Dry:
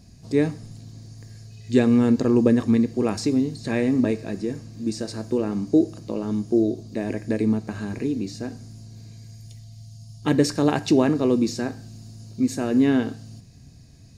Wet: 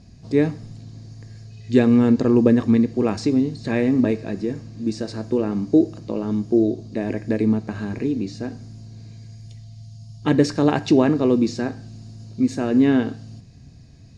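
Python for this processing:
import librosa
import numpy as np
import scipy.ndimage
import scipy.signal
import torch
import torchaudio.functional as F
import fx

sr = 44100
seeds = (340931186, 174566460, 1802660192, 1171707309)

y = fx.air_absorb(x, sr, metres=85.0)
y = y * 10.0 ** (2.5 / 20.0)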